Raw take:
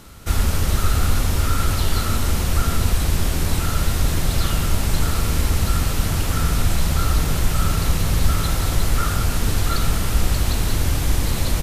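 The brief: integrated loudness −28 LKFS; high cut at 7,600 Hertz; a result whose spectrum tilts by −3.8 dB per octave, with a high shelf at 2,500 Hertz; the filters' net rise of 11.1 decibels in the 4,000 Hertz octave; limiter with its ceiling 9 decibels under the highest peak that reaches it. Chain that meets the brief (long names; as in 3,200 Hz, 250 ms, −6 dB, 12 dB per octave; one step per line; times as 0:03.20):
low-pass filter 7,600 Hz
high-shelf EQ 2,500 Hz +8.5 dB
parametric band 4,000 Hz +6.5 dB
level −6 dB
brickwall limiter −18.5 dBFS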